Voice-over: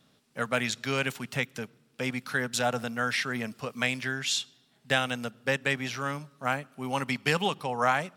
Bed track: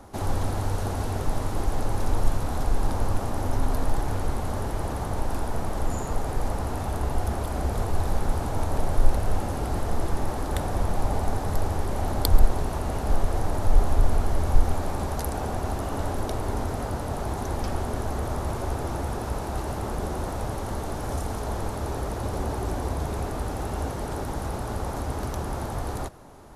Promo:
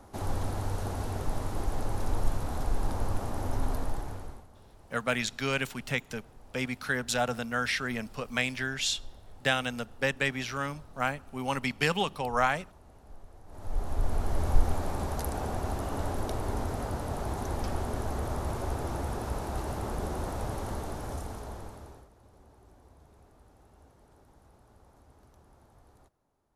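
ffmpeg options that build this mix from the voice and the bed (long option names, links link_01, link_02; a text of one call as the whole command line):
ffmpeg -i stem1.wav -i stem2.wav -filter_complex "[0:a]adelay=4550,volume=-1dB[link_01];[1:a]volume=17.5dB,afade=type=out:start_time=3.69:duration=0.78:silence=0.0841395,afade=type=in:start_time=13.46:duration=0.99:silence=0.0707946,afade=type=out:start_time=20.64:duration=1.45:silence=0.0562341[link_02];[link_01][link_02]amix=inputs=2:normalize=0" out.wav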